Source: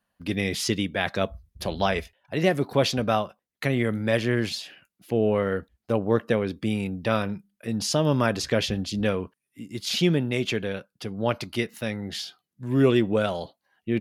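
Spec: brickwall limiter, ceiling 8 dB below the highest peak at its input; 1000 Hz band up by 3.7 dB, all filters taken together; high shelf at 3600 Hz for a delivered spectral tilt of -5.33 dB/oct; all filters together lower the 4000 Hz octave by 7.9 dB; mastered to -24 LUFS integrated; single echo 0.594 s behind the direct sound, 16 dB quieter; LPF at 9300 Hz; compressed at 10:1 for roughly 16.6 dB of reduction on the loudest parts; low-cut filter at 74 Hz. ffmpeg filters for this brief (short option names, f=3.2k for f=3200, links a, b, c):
-af "highpass=74,lowpass=9.3k,equalizer=f=1k:t=o:g=6,highshelf=f=3.6k:g=-5.5,equalizer=f=4k:t=o:g=-7,acompressor=threshold=-32dB:ratio=10,alimiter=level_in=2dB:limit=-24dB:level=0:latency=1,volume=-2dB,aecho=1:1:594:0.158,volume=15dB"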